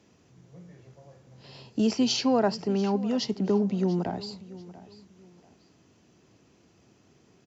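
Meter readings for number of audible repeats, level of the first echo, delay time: 2, -18.0 dB, 0.689 s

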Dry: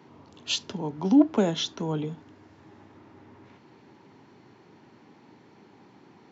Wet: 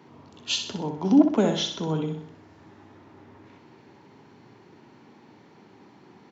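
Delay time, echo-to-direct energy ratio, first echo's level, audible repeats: 63 ms, -6.0 dB, -7.0 dB, 5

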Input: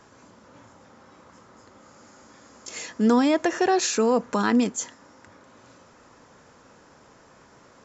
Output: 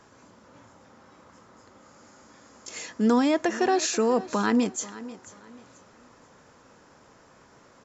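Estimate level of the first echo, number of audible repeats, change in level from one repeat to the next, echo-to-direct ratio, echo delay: -17.0 dB, 2, -10.5 dB, -16.5 dB, 0.487 s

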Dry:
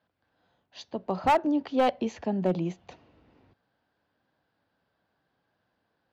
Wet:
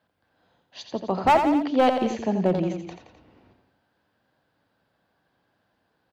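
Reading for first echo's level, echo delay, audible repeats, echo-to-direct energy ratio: -7.5 dB, 86 ms, 3, -6.0 dB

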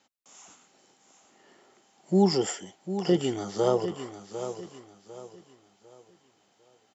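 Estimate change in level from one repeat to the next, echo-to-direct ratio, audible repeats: -9.5 dB, -10.0 dB, 3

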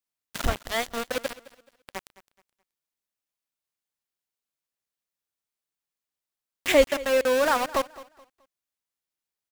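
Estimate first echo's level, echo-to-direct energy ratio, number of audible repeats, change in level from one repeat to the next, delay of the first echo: -19.0 dB, -18.5 dB, 2, -10.5 dB, 0.213 s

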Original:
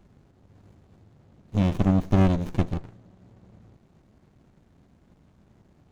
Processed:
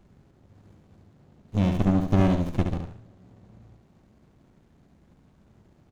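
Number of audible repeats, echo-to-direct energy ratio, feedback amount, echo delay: 3, -5.5 dB, 32%, 70 ms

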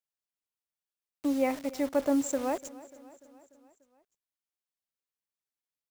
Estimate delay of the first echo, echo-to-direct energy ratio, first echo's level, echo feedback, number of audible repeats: 0.294 s, -17.5 dB, -19.5 dB, 60%, 4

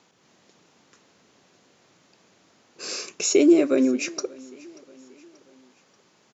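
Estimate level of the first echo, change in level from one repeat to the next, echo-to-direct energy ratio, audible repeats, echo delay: -23.5 dB, -6.0 dB, -22.5 dB, 2, 0.584 s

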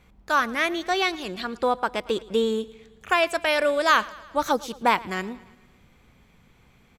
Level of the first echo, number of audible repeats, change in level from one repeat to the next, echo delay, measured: -21.0 dB, 4, -4.5 dB, 0.112 s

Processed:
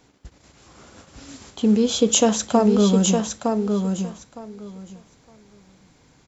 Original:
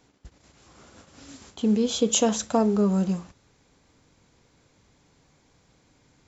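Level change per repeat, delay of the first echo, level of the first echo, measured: -15.5 dB, 0.911 s, -5.0 dB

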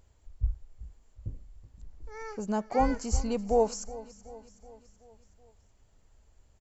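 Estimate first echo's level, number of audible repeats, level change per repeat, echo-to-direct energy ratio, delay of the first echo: -18.0 dB, 4, -5.0 dB, -16.5 dB, 0.375 s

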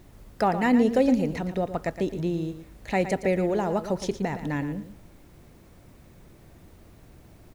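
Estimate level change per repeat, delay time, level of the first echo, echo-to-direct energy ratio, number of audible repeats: -14.0 dB, 0.115 s, -11.0 dB, -11.0 dB, 2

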